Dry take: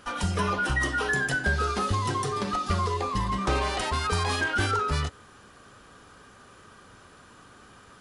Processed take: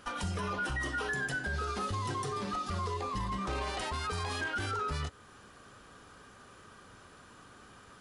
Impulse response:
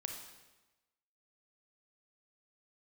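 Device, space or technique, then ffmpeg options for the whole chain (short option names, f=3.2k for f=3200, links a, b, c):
stacked limiters: -af "alimiter=limit=-19.5dB:level=0:latency=1:release=17,alimiter=limit=-23.5dB:level=0:latency=1:release=267,volume=-3dB"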